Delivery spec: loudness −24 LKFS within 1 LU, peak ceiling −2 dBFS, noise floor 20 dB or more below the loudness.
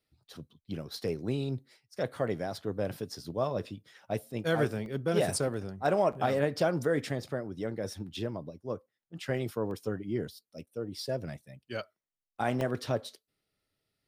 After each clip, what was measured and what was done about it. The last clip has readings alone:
number of dropouts 4; longest dropout 1.2 ms; integrated loudness −33.5 LKFS; sample peak −14.5 dBFS; target loudness −24.0 LKFS
→ repair the gap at 0:04.86/0:05.54/0:09.71/0:12.61, 1.2 ms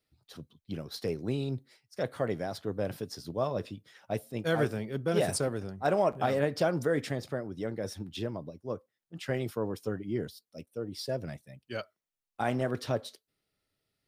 number of dropouts 0; integrated loudness −33.5 LKFS; sample peak −14.5 dBFS; target loudness −24.0 LKFS
→ level +9.5 dB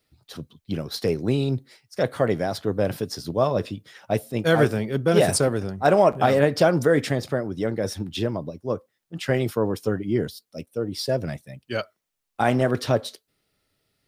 integrated loudness −24.0 LKFS; sample peak −5.0 dBFS; background noise floor −80 dBFS

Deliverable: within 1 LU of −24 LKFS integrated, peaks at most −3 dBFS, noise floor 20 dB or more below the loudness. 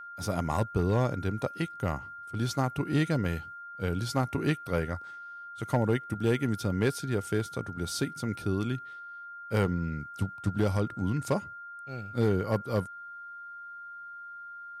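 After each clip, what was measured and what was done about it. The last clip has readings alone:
share of clipped samples 0.3%; peaks flattened at −18.0 dBFS; interfering tone 1,400 Hz; level of the tone −41 dBFS; integrated loudness −31.0 LKFS; sample peak −18.0 dBFS; target loudness −24.0 LKFS
→ clipped peaks rebuilt −18 dBFS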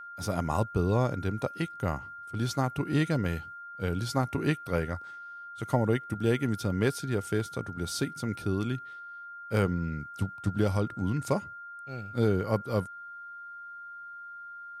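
share of clipped samples 0.0%; interfering tone 1,400 Hz; level of the tone −41 dBFS
→ notch filter 1,400 Hz, Q 30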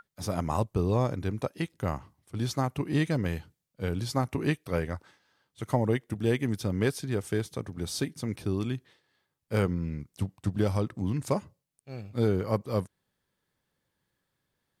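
interfering tone none found; integrated loudness −31.0 LKFS; sample peak −13.0 dBFS; target loudness −24.0 LKFS
→ level +7 dB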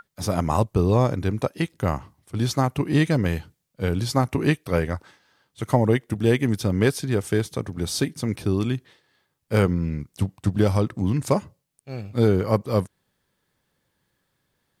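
integrated loudness −24.0 LKFS; sample peak −6.0 dBFS; background noise floor −75 dBFS

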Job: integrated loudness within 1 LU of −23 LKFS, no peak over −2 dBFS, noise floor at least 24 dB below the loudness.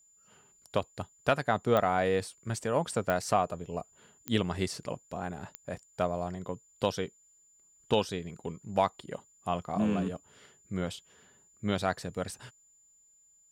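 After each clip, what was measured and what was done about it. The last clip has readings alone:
number of clicks 4; interfering tone 7,100 Hz; level of the tone −61 dBFS; integrated loudness −32.5 LKFS; sample peak −11.0 dBFS; target loudness −23.0 LKFS
→ click removal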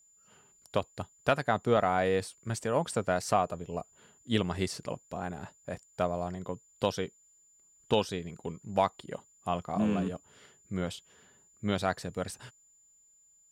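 number of clicks 0; interfering tone 7,100 Hz; level of the tone −61 dBFS
→ notch filter 7,100 Hz, Q 30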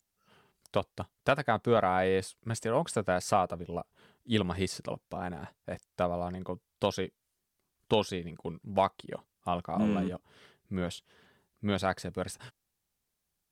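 interfering tone none found; integrated loudness −32.5 LKFS; sample peak −12.5 dBFS; target loudness −23.0 LKFS
→ level +9.5 dB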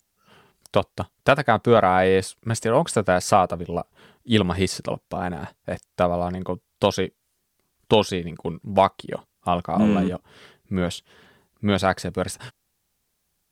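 integrated loudness −23.0 LKFS; sample peak −3.0 dBFS; background noise floor −74 dBFS

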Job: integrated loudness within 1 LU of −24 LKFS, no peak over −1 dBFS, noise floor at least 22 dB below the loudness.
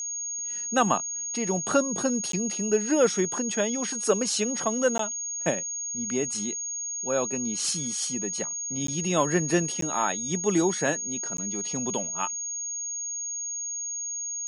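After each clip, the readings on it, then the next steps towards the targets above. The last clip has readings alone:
number of dropouts 5; longest dropout 13 ms; interfering tone 6,600 Hz; level of the tone −30 dBFS; integrated loudness −26.5 LKFS; sample peak −9.0 dBFS; target loudness −24.0 LKFS
→ repair the gap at 0:02.32/0:04.98/0:08.87/0:09.81/0:11.37, 13 ms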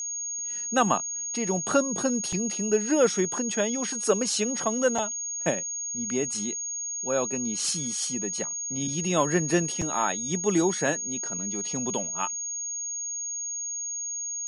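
number of dropouts 0; interfering tone 6,600 Hz; level of the tone −30 dBFS
→ notch filter 6,600 Hz, Q 30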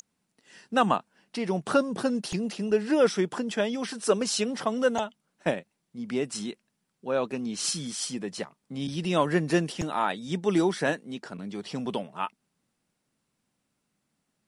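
interfering tone none found; integrated loudness −28.5 LKFS; sample peak −10.0 dBFS; target loudness −24.0 LKFS
→ level +4.5 dB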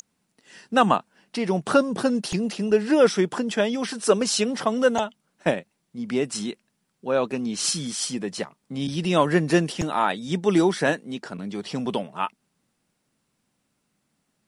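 integrated loudness −24.0 LKFS; sample peak −5.5 dBFS; background noise floor −74 dBFS

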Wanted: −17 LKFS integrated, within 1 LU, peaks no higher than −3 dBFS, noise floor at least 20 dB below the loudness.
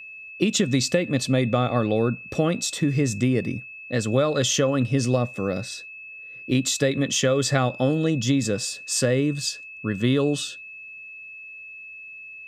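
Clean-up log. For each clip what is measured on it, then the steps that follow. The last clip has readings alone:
interfering tone 2,600 Hz; level of the tone −38 dBFS; integrated loudness −23.5 LKFS; sample peak −6.0 dBFS; target loudness −17.0 LKFS
→ notch filter 2,600 Hz, Q 30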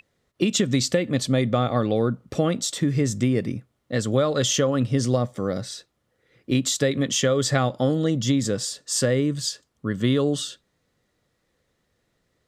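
interfering tone none found; integrated loudness −23.5 LKFS; sample peak −6.5 dBFS; target loudness −17.0 LKFS
→ level +6.5 dB
brickwall limiter −3 dBFS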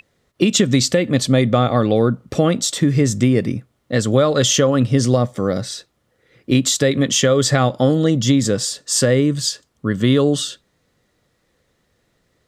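integrated loudness −17.0 LKFS; sample peak −3.0 dBFS; background noise floor −66 dBFS

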